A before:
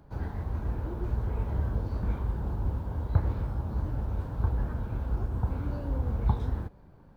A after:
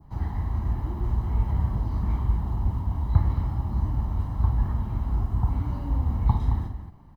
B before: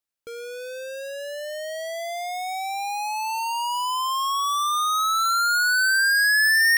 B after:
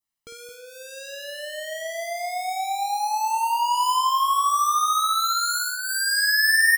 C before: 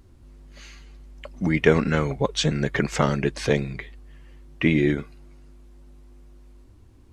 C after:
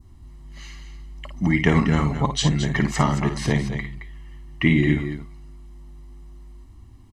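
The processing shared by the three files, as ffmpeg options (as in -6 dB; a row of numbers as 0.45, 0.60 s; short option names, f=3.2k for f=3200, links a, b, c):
-filter_complex "[0:a]aecho=1:1:1:0.69,adynamicequalizer=threshold=0.0141:dfrequency=2600:dqfactor=0.88:tfrequency=2600:tqfactor=0.88:attack=5:release=100:ratio=0.375:range=2.5:mode=cutabove:tftype=bell,asplit=2[a][b];[b]aecho=0:1:54|220:0.398|0.335[c];[a][c]amix=inputs=2:normalize=0"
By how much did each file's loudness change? +5.0, 0.0, +1.5 LU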